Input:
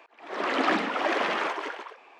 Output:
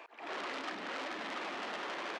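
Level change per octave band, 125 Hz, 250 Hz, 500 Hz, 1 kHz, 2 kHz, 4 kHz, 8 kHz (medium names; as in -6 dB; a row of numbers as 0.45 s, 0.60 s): -13.0 dB, -14.0 dB, -13.0 dB, -12.0 dB, -10.5 dB, -8.0 dB, -6.0 dB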